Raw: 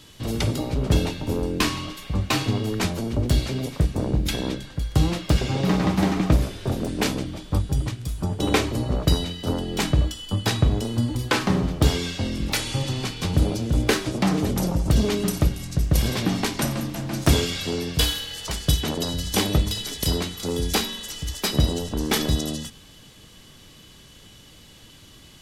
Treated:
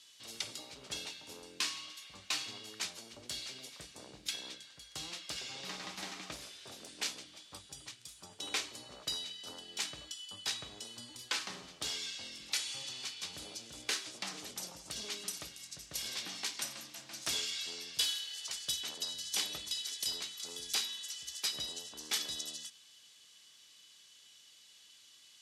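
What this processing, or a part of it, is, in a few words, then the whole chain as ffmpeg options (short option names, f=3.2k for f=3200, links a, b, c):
piezo pickup straight into a mixer: -af "lowpass=6.3k,aderivative,volume=-2dB"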